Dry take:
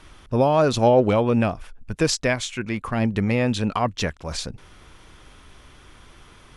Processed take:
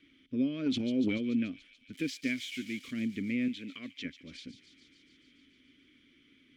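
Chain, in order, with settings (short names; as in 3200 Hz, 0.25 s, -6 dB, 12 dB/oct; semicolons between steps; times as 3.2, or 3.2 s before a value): 1.93–2.91 switching spikes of -17 dBFS; vowel filter i; bell 780 Hz -15 dB 0.22 oct; 0.66–1.18 transient shaper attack -2 dB, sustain +8 dB; 3.48–4.05 low shelf 330 Hz -11 dB; thin delay 0.144 s, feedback 74%, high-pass 3700 Hz, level -8.5 dB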